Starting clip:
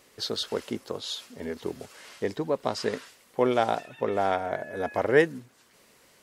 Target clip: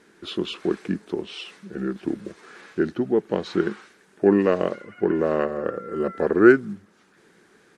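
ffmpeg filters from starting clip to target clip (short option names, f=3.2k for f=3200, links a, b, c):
-af "equalizer=f=250:t=o:w=1:g=11,equalizer=f=500:t=o:w=1:g=10,equalizer=f=2k:t=o:w=1:g=11,aresample=32000,aresample=44100,asetrate=35280,aresample=44100,volume=-5.5dB"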